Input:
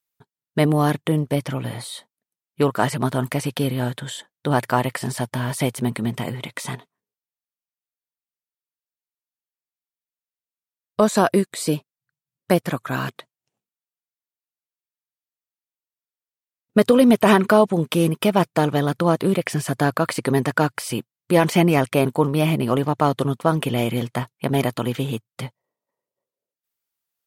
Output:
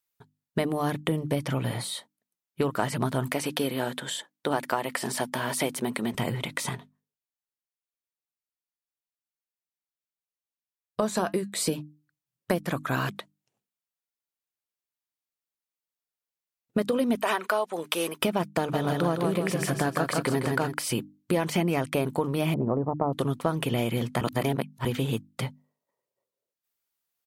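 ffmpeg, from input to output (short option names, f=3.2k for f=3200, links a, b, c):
-filter_complex "[0:a]asettb=1/sr,asplit=3[a][b][c];[a]atrim=end=3.334[d];[b]atrim=start=3.33:end=6.15,asetpts=PTS-STARTPTS,afade=t=in:d=0.004:c=qsin,afade=t=out:st=2.816:d=0.004:c=qsin,highpass=260[e];[c]atrim=start=6.146[f];[d][e]acrossfade=d=0.004:c1=hsin:c2=qsin[g];[g][f]acrossfade=d=0.004:c1=qsin:c2=hsin,asettb=1/sr,asplit=3[h][i][j];[h]atrim=end=6.694[k];[i]atrim=start=6.69:end=11.55,asetpts=PTS-STARTPTS,afade=t=in:d=0.004:c=qsin,afade=t=out:st=4.856:d=0.004:c=qsin,flanger=delay=4.9:depth=1.4:regen=-72:speed=1.7:shape=sinusoidal[l];[j]atrim=start=11.546[m];[k][l]acrossfade=d=0.004:c1=hsin:c2=qsin[n];[n][m]acrossfade=d=0.004:c1=qsin:c2=hsin,asettb=1/sr,asplit=3[o][p][q];[o]atrim=end=17.154[r];[p]atrim=start=17.15:end=18.19,asetpts=PTS-STARTPTS,afade=t=in:d=0.004:c=qsin,afade=t=out:st=1.036:d=0.004:c=qsin,highpass=610[s];[q]atrim=start=18.186[t];[r][s]acrossfade=d=0.004:c1=hsin:c2=qsin[u];[u][t]acrossfade=d=0.004:c1=qsin:c2=hsin,asplit=3[v][w][x];[v]afade=t=out:st=18.73:d=0.02[y];[w]aecho=1:1:161|322|483|644|805|966:0.596|0.268|0.121|0.0543|0.0244|0.011,afade=t=in:st=18.73:d=0.02,afade=t=out:st=20.72:d=0.02[z];[x]afade=t=in:st=20.72:d=0.02[aa];[y][z][aa]amix=inputs=3:normalize=0,asettb=1/sr,asplit=3[ab][ac][ad];[ab]atrim=end=22.544[ae];[ac]atrim=start=22.54:end=23.13,asetpts=PTS-STARTPTS,afade=t=in:d=0.004:c=qsin,afade=t=out:st=0.586:d=0.004:c=qsin,lowpass=f=1k:w=0.5412,lowpass=f=1k:w=1.3066[af];[ad]atrim=start=23.126[ag];[ae][af]acrossfade=d=0.004:c1=hsin:c2=qsin[ah];[ah][ag]acrossfade=d=0.004:c1=qsin:c2=hsin,asplit=3[ai][aj][ak];[ai]atrim=end=24.212[al];[aj]atrim=start=24.208:end=24.852,asetpts=PTS-STARTPTS,areverse[am];[ak]atrim=start=24.848[an];[al][am]acrossfade=d=0.004:c1=hsin:c2=hsin[ao];[ao][an]acrossfade=d=0.004:c1=hsin:c2=hsin,acompressor=threshold=-22dB:ratio=6,bandreject=f=50:t=h:w=6,bandreject=f=100:t=h:w=6,bandreject=f=150:t=h:w=6,bandreject=f=200:t=h:w=6,bandreject=f=250:t=h:w=6,bandreject=f=300:t=h:w=6"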